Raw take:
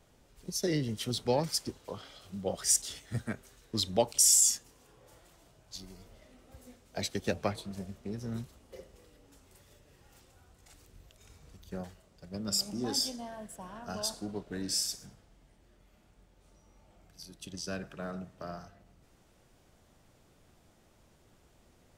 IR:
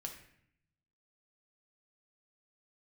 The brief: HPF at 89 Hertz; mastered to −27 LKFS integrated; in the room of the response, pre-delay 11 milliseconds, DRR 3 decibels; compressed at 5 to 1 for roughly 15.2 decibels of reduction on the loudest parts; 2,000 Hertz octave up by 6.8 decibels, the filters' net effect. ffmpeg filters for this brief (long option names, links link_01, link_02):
-filter_complex "[0:a]highpass=89,equalizer=frequency=2000:width_type=o:gain=8.5,acompressor=threshold=-37dB:ratio=5,asplit=2[link_01][link_02];[1:a]atrim=start_sample=2205,adelay=11[link_03];[link_02][link_03]afir=irnorm=-1:irlink=0,volume=-0.5dB[link_04];[link_01][link_04]amix=inputs=2:normalize=0,volume=13dB"